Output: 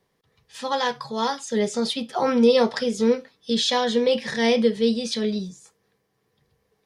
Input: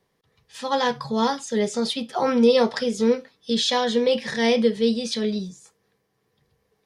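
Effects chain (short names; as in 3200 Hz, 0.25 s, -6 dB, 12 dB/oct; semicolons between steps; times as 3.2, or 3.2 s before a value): 0.72–1.49 low shelf 320 Hz -10.5 dB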